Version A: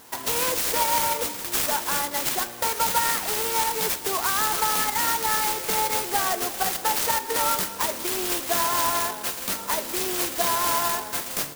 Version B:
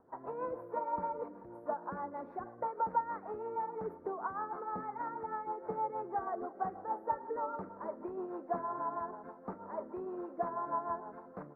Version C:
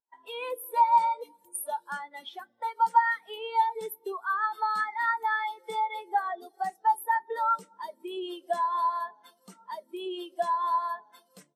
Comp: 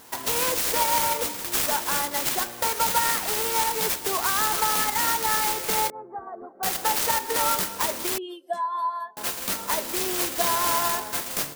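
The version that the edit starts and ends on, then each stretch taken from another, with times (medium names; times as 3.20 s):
A
5.90–6.63 s: from B
8.18–9.17 s: from C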